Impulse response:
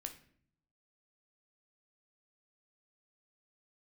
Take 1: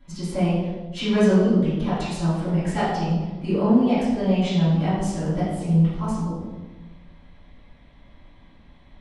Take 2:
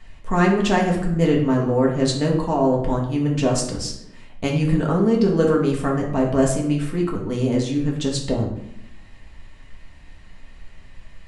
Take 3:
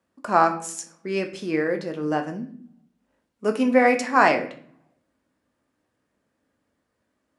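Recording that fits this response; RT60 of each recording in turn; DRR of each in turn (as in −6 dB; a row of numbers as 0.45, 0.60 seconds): 3; 1.3, 0.80, 0.55 seconds; −15.5, −2.5, 5.0 decibels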